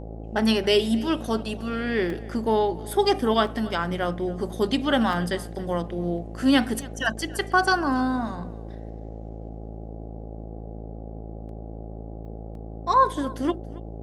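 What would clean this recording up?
de-hum 54.8 Hz, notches 15; interpolate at 2.10/3.47/5.13/6.82/11.49/12.25/12.55 s, 2 ms; noise print and reduce 30 dB; inverse comb 278 ms -21 dB

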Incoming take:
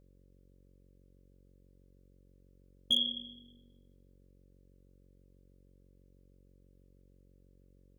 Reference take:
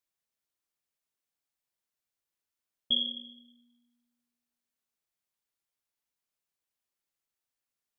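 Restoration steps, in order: clip repair -20.5 dBFS; de-hum 46.2 Hz, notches 12

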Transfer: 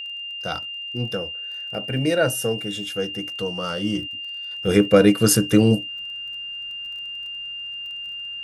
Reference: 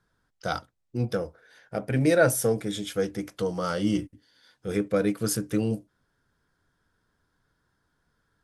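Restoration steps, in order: de-click; band-stop 2.8 kHz, Q 30; trim 0 dB, from 4.51 s -10.5 dB

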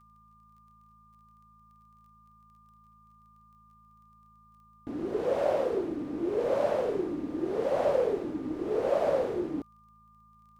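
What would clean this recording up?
de-click; de-hum 54.4 Hz, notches 4; band-stop 1.2 kHz, Q 30

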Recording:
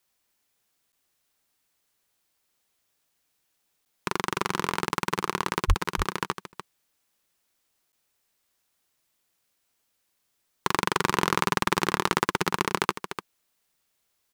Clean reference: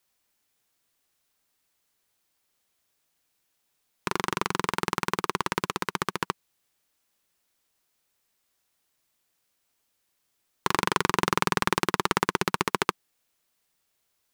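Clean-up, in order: 5.67–5.79 s: high-pass 140 Hz 24 dB/octave; interpolate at 0.92/3.85/4.89/5.84/6.52/7.92 s, 9.3 ms; inverse comb 296 ms -10 dB

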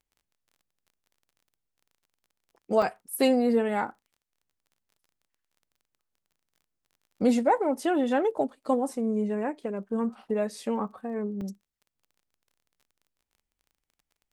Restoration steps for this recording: de-click; interpolate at 2.82/6.63/11.41/12.65 s, 3.6 ms

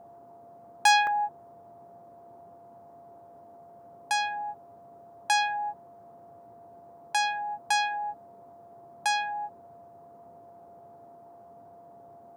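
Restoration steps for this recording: clip repair -11 dBFS; band-stop 690 Hz, Q 30; interpolate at 1.07 s, 1.5 ms; noise print and reduce 24 dB

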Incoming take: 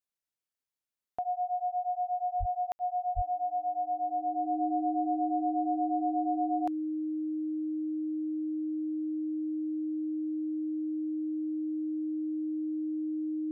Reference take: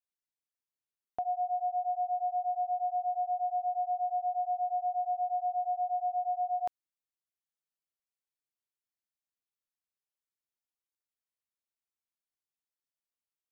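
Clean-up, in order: band-stop 310 Hz, Q 30; de-plosive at 2.39/3.15 s; room tone fill 2.72–2.79 s

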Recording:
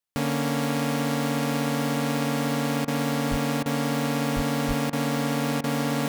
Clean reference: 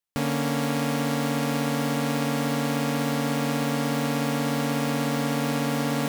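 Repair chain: 3.30–3.42 s: high-pass 140 Hz 24 dB/octave; 4.35–4.47 s: high-pass 140 Hz 24 dB/octave; 4.67–4.79 s: high-pass 140 Hz 24 dB/octave; interpolate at 2.85/3.63/4.90/5.61 s, 27 ms

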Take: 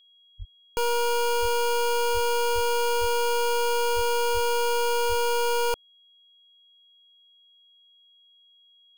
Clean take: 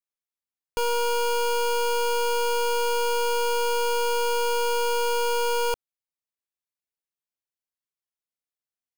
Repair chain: band-stop 3.3 kHz, Q 30; de-plosive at 0.38/1.41/2.13/2.54/3.00/3.95/4.33/5.08 s

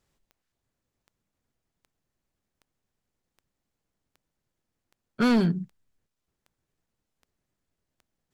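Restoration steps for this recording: clip repair -17.5 dBFS; de-click

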